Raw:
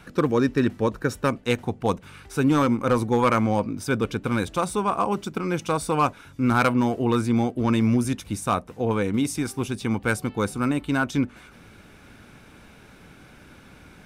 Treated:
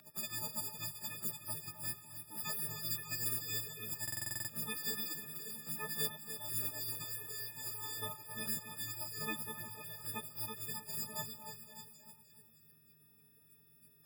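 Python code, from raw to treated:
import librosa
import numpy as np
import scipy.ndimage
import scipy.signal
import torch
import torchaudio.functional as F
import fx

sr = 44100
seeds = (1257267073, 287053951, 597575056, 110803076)

y = fx.freq_snap(x, sr, grid_st=6)
y = fx.dynamic_eq(y, sr, hz=1300.0, q=0.77, threshold_db=-33.0, ratio=4.0, max_db=-7)
y = np.repeat(y[::3], 3)[:len(y)]
y = scipy.signal.sosfilt(scipy.signal.butter(2, 360.0, 'highpass', fs=sr, output='sos'), y)
y = fx.echo_feedback(y, sr, ms=299, feedback_pct=57, wet_db=-9.0)
y = fx.spec_gate(y, sr, threshold_db=-20, keep='weak')
y = fx.echo_stepped(y, sr, ms=259, hz=930.0, octaves=1.4, feedback_pct=70, wet_db=-9.0)
y = fx.buffer_glitch(y, sr, at_s=(4.03,), block=2048, repeats=9)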